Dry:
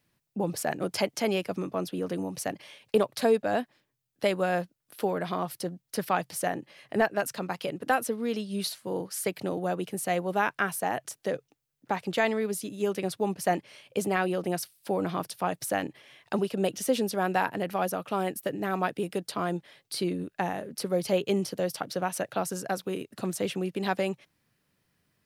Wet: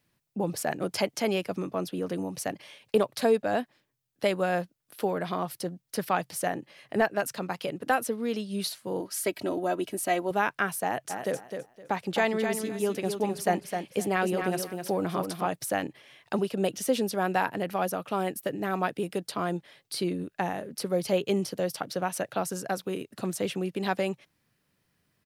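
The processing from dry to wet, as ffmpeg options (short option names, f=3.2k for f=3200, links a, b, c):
-filter_complex "[0:a]asettb=1/sr,asplit=3[a][b][c];[a]atrim=end=9.004[d];[b]atrim=start=9:end=10.31,asetpts=PTS-STARTPTS,afade=t=in:d=0.004:c=qsin,afade=t=out:st=1.306:d=0.004:c=qsin,aecho=1:1:3.1:0.65,atrim=end_sample=57771[e];[c]atrim=start=10.306[f];[d][e]acrossfade=d=0.004:c1=hsin:c2=qsin[g];[g][f]acrossfade=d=0.004:c1=qsin:c2=hsin,asplit=3[h][i][j];[h]afade=t=out:st=11.09:d=0.02[k];[i]aecho=1:1:258|516|774:0.473|0.104|0.0229,afade=t=in:st=11.09:d=0.02,afade=t=out:st=15.46:d=0.02[l];[j]afade=t=in:st=15.46:d=0.02[m];[k][l][m]amix=inputs=3:normalize=0"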